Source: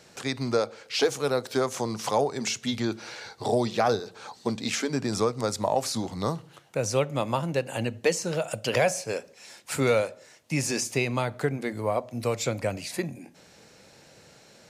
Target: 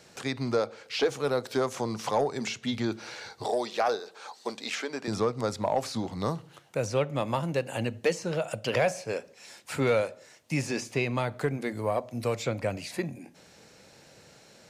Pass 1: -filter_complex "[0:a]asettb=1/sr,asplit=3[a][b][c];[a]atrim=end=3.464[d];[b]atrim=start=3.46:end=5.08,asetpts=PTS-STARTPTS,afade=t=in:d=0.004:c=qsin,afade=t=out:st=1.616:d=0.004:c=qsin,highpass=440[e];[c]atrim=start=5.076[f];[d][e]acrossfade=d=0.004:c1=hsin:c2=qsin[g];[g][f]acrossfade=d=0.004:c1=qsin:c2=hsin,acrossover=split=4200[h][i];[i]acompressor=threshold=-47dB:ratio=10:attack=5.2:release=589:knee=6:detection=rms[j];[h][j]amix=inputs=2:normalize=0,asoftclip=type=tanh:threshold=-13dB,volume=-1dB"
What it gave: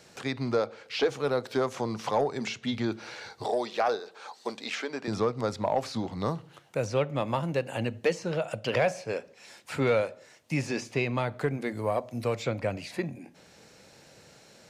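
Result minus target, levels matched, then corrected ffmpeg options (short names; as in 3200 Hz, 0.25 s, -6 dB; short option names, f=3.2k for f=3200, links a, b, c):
compressor: peak gain reduction +7.5 dB
-filter_complex "[0:a]asettb=1/sr,asplit=3[a][b][c];[a]atrim=end=3.464[d];[b]atrim=start=3.46:end=5.08,asetpts=PTS-STARTPTS,afade=t=in:d=0.004:c=qsin,afade=t=out:st=1.616:d=0.004:c=qsin,highpass=440[e];[c]atrim=start=5.076[f];[d][e]acrossfade=d=0.004:c1=hsin:c2=qsin[g];[g][f]acrossfade=d=0.004:c1=qsin:c2=hsin,acrossover=split=4200[h][i];[i]acompressor=threshold=-38.5dB:ratio=10:attack=5.2:release=589:knee=6:detection=rms[j];[h][j]amix=inputs=2:normalize=0,asoftclip=type=tanh:threshold=-13dB,volume=-1dB"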